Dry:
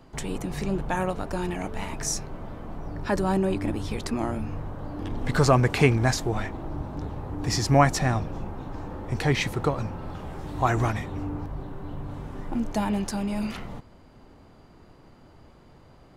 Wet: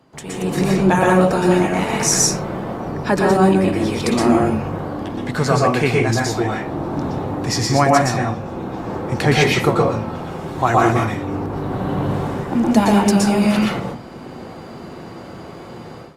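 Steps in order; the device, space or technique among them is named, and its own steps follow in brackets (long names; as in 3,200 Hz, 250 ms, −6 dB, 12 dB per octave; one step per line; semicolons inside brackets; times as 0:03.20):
far-field microphone of a smart speaker (convolution reverb RT60 0.40 s, pre-delay 113 ms, DRR −2 dB; high-pass filter 120 Hz 12 dB per octave; automatic gain control gain up to 16.5 dB; level −1 dB; Opus 48 kbit/s 48,000 Hz)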